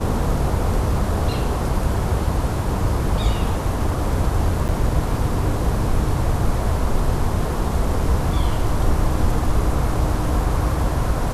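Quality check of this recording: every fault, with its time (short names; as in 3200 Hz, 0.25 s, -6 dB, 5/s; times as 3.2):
4.68–4.69 gap 8.8 ms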